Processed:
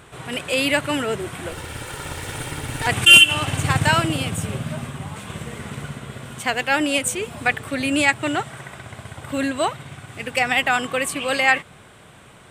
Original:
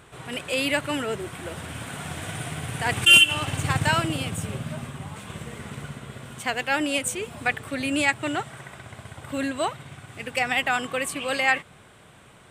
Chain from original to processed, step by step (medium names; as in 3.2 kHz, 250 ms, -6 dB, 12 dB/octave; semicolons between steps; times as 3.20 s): 1.51–2.87 s: comb filter that takes the minimum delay 2.2 ms; trim +4.5 dB